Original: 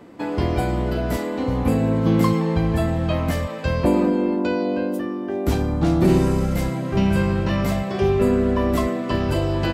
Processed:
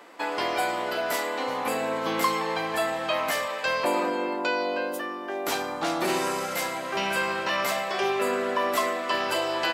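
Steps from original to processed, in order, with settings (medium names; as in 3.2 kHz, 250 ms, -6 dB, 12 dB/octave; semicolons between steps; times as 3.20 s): high-pass 810 Hz 12 dB/octave; in parallel at -2 dB: peak limiter -22.5 dBFS, peak gain reduction 9 dB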